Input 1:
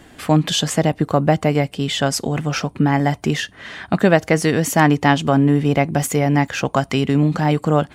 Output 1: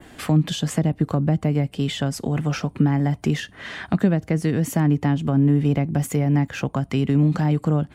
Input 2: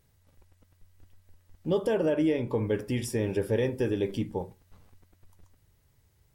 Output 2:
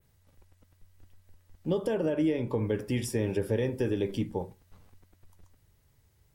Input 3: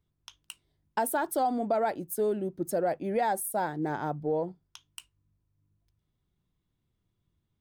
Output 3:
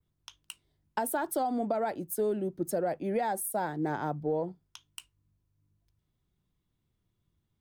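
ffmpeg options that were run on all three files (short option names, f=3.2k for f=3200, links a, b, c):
-filter_complex "[0:a]adynamicequalizer=threshold=0.0112:dfrequency=5400:dqfactor=0.92:tfrequency=5400:tqfactor=0.92:attack=5:release=100:ratio=0.375:range=2.5:mode=cutabove:tftype=bell,acrossover=split=290[a][b];[b]acompressor=threshold=-27dB:ratio=10[c];[a][c]amix=inputs=2:normalize=0"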